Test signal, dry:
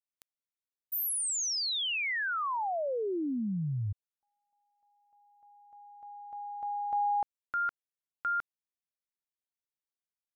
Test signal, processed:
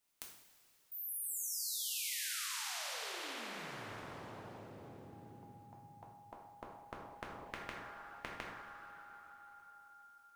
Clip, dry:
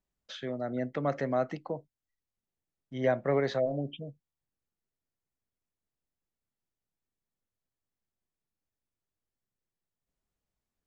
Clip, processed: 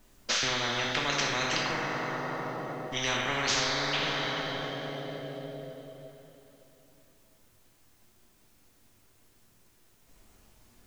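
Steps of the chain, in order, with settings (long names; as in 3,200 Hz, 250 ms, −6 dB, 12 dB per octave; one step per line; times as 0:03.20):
coupled-rooms reverb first 0.6 s, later 3.4 s, from −14 dB, DRR −2 dB
every bin compressed towards the loudest bin 10 to 1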